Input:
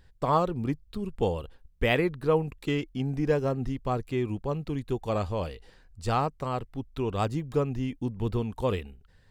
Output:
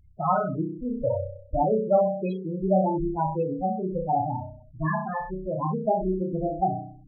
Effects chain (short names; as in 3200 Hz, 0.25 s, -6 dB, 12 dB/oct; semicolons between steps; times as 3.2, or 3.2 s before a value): speed glide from 115% -> 148%; flutter echo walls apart 5.5 m, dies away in 0.74 s; loudest bins only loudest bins 8; dynamic EQ 840 Hz, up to +8 dB, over -43 dBFS, Q 2.8